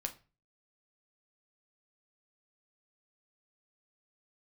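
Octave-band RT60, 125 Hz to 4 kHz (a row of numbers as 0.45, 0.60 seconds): 0.50, 0.40, 0.35, 0.35, 0.30, 0.30 seconds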